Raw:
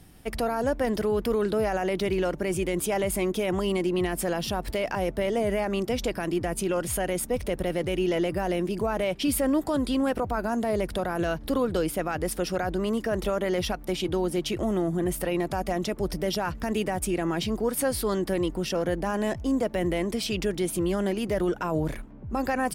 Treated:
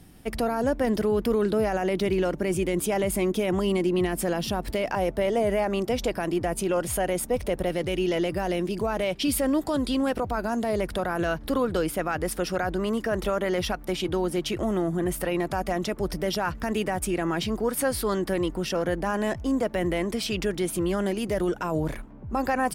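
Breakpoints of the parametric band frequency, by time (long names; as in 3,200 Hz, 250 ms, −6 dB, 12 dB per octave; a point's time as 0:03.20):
parametric band +3.5 dB 1.3 octaves
240 Hz
from 0:04.88 720 Hz
from 0:07.69 4,300 Hz
from 0:10.78 1,400 Hz
from 0:21.06 8,500 Hz
from 0:21.84 980 Hz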